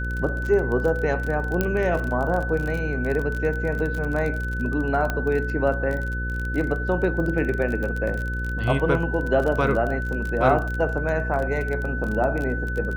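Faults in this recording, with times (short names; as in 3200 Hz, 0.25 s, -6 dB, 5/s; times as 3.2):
buzz 60 Hz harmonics 9 -28 dBFS
crackle 31/s -27 dBFS
tone 1500 Hz -30 dBFS
1.61 pop -9 dBFS
5.1 pop -12 dBFS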